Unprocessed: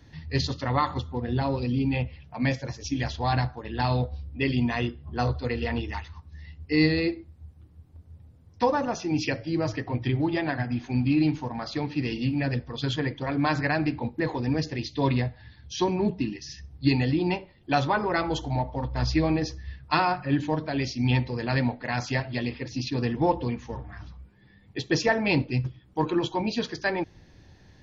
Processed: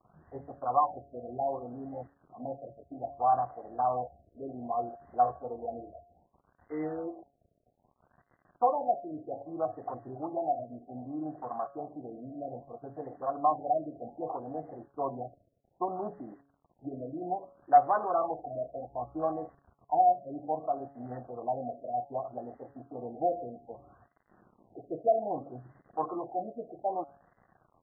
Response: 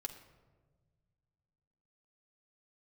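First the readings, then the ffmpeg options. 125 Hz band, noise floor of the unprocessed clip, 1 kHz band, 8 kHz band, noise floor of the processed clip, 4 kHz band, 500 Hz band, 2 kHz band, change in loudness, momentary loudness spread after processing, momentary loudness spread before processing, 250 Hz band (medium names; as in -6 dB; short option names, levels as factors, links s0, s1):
-22.5 dB, -55 dBFS, +1.0 dB, no reading, -74 dBFS, under -40 dB, -3.5 dB, -23.5 dB, -6.0 dB, 17 LU, 9 LU, -15.0 dB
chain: -filter_complex "[0:a]aeval=exprs='val(0)+0.5*0.0178*sgn(val(0))':c=same,highpass=61,afwtdn=0.0355,asplit=3[s0][s1][s2];[s0]bandpass=f=730:t=q:w=8,volume=1[s3];[s1]bandpass=f=1090:t=q:w=8,volume=0.501[s4];[s2]bandpass=f=2440:t=q:w=8,volume=0.355[s5];[s3][s4][s5]amix=inputs=3:normalize=0,asoftclip=type=hard:threshold=0.119,acrusher=bits=10:mix=0:aa=0.000001,bandreject=f=140:t=h:w=4,bandreject=f=280:t=h:w=4,bandreject=f=420:t=h:w=4,bandreject=f=560:t=h:w=4,bandreject=f=700:t=h:w=4,bandreject=f=840:t=h:w=4,bandreject=f=980:t=h:w=4,bandreject=f=1120:t=h:w=4,bandreject=f=1260:t=h:w=4,bandreject=f=1400:t=h:w=4,bandreject=f=1540:t=h:w=4,bandreject=f=1680:t=h:w=4,bandreject=f=1820:t=h:w=4,bandreject=f=1960:t=h:w=4,bandreject=f=2100:t=h:w=4,bandreject=f=2240:t=h:w=4,bandreject=f=2380:t=h:w=4,bandreject=f=2520:t=h:w=4,bandreject=f=2660:t=h:w=4,bandreject=f=2800:t=h:w=4,bandreject=f=2940:t=h:w=4,bandreject=f=3080:t=h:w=4,bandreject=f=3220:t=h:w=4,bandreject=f=3360:t=h:w=4,bandreject=f=3500:t=h:w=4,bandreject=f=3640:t=h:w=4,bandreject=f=3780:t=h:w=4,bandreject=f=3920:t=h:w=4,bandreject=f=4060:t=h:w=4,bandreject=f=4200:t=h:w=4,bandreject=f=4340:t=h:w=4,bandreject=f=4480:t=h:w=4,bandreject=f=4620:t=h:w=4,bandreject=f=4760:t=h:w=4,bandreject=f=4900:t=h:w=4,bandreject=f=5040:t=h:w=4,bandreject=f=5180:t=h:w=4,afftfilt=real='re*lt(b*sr/1024,690*pow(2100/690,0.5+0.5*sin(2*PI*0.63*pts/sr)))':imag='im*lt(b*sr/1024,690*pow(2100/690,0.5+0.5*sin(2*PI*0.63*pts/sr)))':win_size=1024:overlap=0.75,volume=2.11"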